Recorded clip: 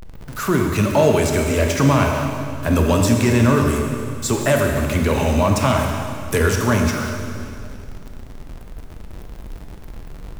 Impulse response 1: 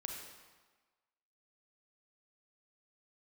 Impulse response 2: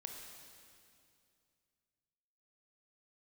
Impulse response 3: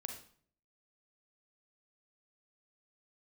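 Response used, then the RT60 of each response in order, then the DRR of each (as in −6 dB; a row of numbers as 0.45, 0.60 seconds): 2; 1.3, 2.4, 0.55 seconds; 1.0, 1.5, 4.0 decibels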